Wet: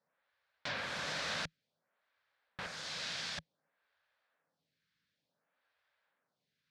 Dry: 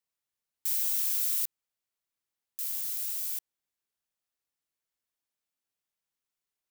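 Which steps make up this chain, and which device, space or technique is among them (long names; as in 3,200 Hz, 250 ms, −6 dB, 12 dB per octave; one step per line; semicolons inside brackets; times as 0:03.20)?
0:02.66–0:03.38: meter weighting curve A
vibe pedal into a guitar amplifier (phaser with staggered stages 0.56 Hz; tube saturation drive 34 dB, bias 0.35; loudspeaker in its box 85–4,100 Hz, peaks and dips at 160 Hz +8 dB, 360 Hz −9 dB, 560 Hz +6 dB, 1,600 Hz +7 dB, 2,900 Hz −4 dB)
level +16 dB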